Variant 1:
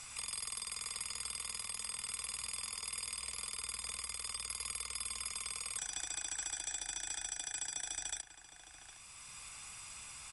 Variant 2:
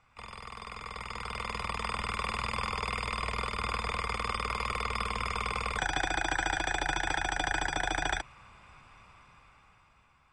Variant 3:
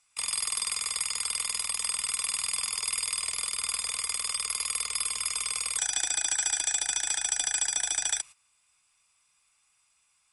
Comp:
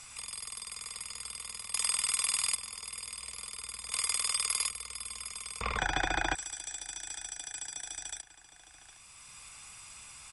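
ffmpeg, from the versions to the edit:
-filter_complex "[2:a]asplit=2[a][b];[0:a]asplit=4[c][d][e][f];[c]atrim=end=1.742[g];[a]atrim=start=1.738:end=2.552[h];[d]atrim=start=2.548:end=3.922[i];[b]atrim=start=3.918:end=4.692[j];[e]atrim=start=4.688:end=5.612[k];[1:a]atrim=start=5.608:end=6.352[l];[f]atrim=start=6.348[m];[g][h]acrossfade=d=0.004:c1=hsin:c2=hsin[n];[n][i]acrossfade=d=0.004:c1=hsin:c2=hsin[o];[o][j]acrossfade=d=0.004:c1=hsin:c2=hsin[p];[p][k]acrossfade=d=0.004:c1=hsin:c2=hsin[q];[q][l]acrossfade=d=0.004:c1=hsin:c2=hsin[r];[r][m]acrossfade=d=0.004:c1=hsin:c2=hsin"

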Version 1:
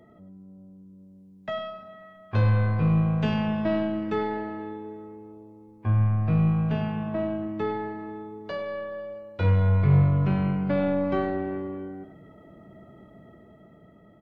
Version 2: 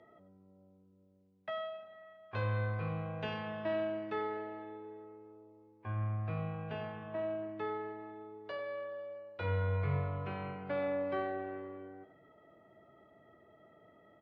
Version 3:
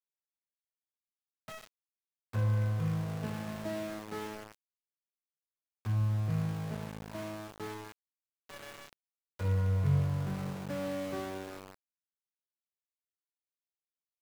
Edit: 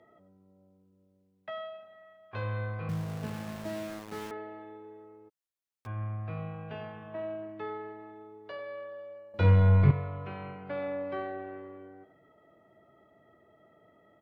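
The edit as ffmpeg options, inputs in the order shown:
-filter_complex "[2:a]asplit=2[a][b];[1:a]asplit=4[c][d][e][f];[c]atrim=end=2.892[g];[a]atrim=start=2.888:end=4.312[h];[d]atrim=start=4.308:end=5.3[i];[b]atrim=start=5.28:end=5.87[j];[e]atrim=start=5.85:end=9.342[k];[0:a]atrim=start=9.338:end=9.912[l];[f]atrim=start=9.908[m];[g][h]acrossfade=d=0.004:c1=hsin:c2=hsin[n];[n][i]acrossfade=d=0.004:c1=hsin:c2=hsin[o];[o][j]acrossfade=d=0.02:c1=tri:c2=tri[p];[p][k]acrossfade=d=0.02:c1=tri:c2=tri[q];[q][l]acrossfade=d=0.004:c1=hsin:c2=hsin[r];[r][m]acrossfade=d=0.004:c1=hsin:c2=hsin"

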